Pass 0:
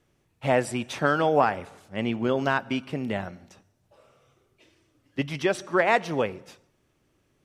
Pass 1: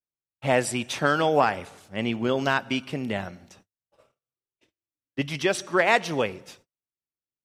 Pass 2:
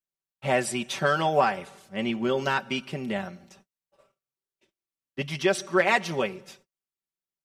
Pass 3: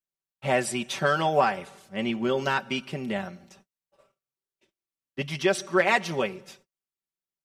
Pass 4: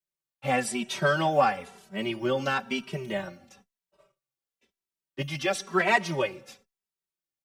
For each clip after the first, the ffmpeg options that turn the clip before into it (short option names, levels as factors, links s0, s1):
-af "agate=range=0.0141:threshold=0.00158:ratio=16:detection=peak,adynamicequalizer=threshold=0.0126:dfrequency=2200:dqfactor=0.7:tfrequency=2200:tqfactor=0.7:attack=5:release=100:ratio=0.375:range=3.5:mode=boostabove:tftype=highshelf"
-af "aecho=1:1:5.2:0.67,volume=0.708"
-af anull
-filter_complex "[0:a]acrossover=split=180[s0][s1];[s0]acrusher=samples=12:mix=1:aa=0.000001:lfo=1:lforange=7.2:lforate=0.78[s2];[s2][s1]amix=inputs=2:normalize=0,asplit=2[s3][s4];[s4]adelay=2.7,afreqshift=-1[s5];[s3][s5]amix=inputs=2:normalize=1,volume=1.26"